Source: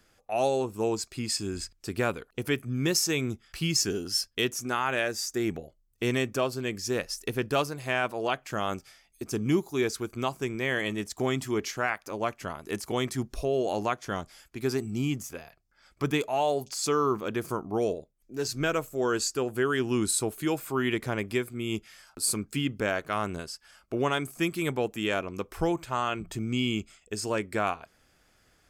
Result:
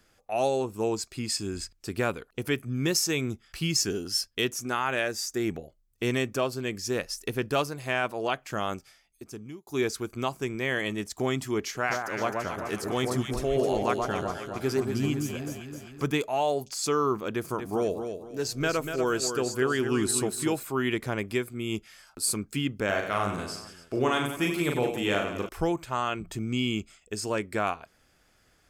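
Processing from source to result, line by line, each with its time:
0:08.62–0:09.67: fade out
0:11.62–0:16.06: delay that swaps between a low-pass and a high-pass 130 ms, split 1,400 Hz, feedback 74%, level −2.5 dB
0:17.30–0:20.63: repeating echo 241 ms, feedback 31%, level −7.5 dB
0:22.85–0:25.49: reverse bouncing-ball delay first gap 40 ms, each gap 1.4×, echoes 5

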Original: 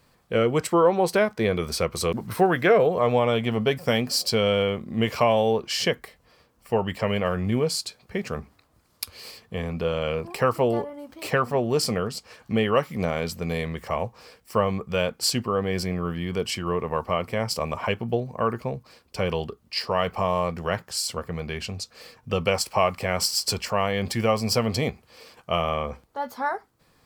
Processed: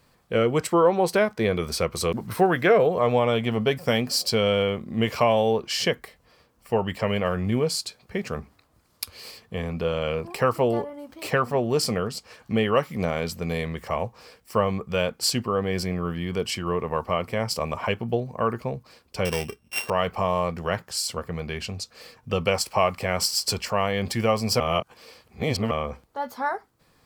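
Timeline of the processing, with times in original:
0:19.25–0:19.90: samples sorted by size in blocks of 16 samples
0:24.60–0:25.71: reverse

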